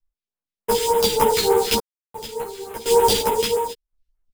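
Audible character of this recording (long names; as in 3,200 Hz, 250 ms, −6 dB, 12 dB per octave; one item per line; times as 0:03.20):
aliases and images of a low sample rate 8,300 Hz, jitter 20%
phaser sweep stages 2, 3.4 Hz, lowest notch 790–4,600 Hz
sample-and-hold tremolo 2.8 Hz, depth 100%
a shimmering, thickened sound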